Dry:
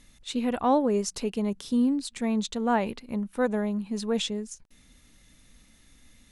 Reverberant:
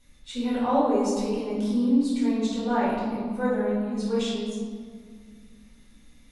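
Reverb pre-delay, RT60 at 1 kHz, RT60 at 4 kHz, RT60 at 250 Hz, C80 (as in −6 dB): 4 ms, 1.8 s, 1.1 s, 3.0 s, 1.5 dB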